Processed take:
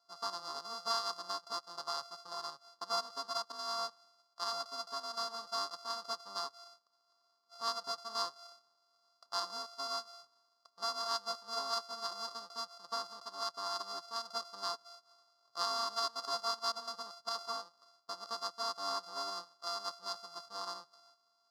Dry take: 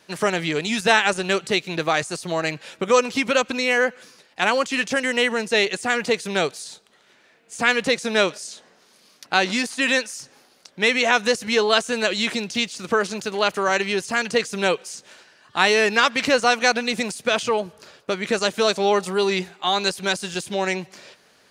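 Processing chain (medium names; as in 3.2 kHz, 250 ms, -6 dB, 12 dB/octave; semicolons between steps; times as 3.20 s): sorted samples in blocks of 64 samples; two resonant band-passes 2.3 kHz, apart 2.1 oct; trim -5.5 dB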